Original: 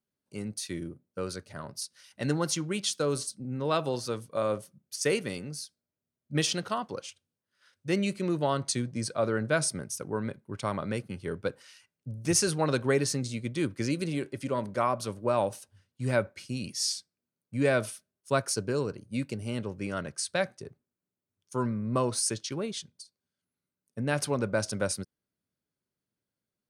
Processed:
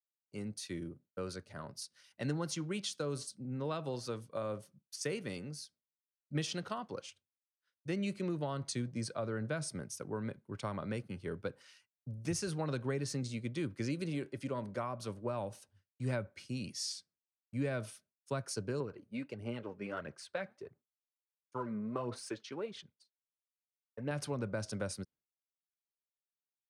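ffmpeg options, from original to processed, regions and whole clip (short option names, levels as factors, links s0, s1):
-filter_complex "[0:a]asettb=1/sr,asplit=3[s0][s1][s2];[s0]atrim=end=18.804[s3];[s1]atrim=start=18.8:end=24.11,asetpts=PTS-STARTPTS,afade=t=in:d=0.004:c=qsin,afade=t=out:st=5.306:d=0.004:c=qsin,bass=f=250:g=-9,treble=f=4000:g=-14,aphaser=in_gain=1:out_gain=1:delay=4.9:decay=0.5:speed=1.5:type=sinusoidal[s4];[s2]atrim=start=24.106[s5];[s3][s4]acrossfade=d=0.004:c1=hsin:c2=qsin[s6];[s6][s5]acrossfade=d=0.004:c1=qsin:c2=hsin,agate=range=0.0224:threshold=0.00251:ratio=3:detection=peak,highshelf=f=8200:g=-8.5,acrossover=split=190[s7][s8];[s8]acompressor=threshold=0.0316:ratio=6[s9];[s7][s9]amix=inputs=2:normalize=0,volume=0.562"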